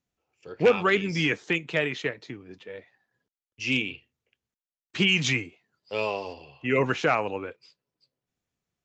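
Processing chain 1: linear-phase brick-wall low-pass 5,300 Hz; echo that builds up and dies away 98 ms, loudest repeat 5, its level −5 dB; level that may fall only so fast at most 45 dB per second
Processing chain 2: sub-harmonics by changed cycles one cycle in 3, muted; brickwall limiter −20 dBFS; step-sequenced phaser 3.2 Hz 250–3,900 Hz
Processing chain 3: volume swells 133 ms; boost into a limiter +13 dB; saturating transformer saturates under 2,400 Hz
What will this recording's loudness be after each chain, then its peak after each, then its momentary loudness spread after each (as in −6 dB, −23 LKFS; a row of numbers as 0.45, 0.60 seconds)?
−22.0, −36.5, −21.5 LKFS; −6.0, −19.5, −1.5 dBFS; 9, 14, 16 LU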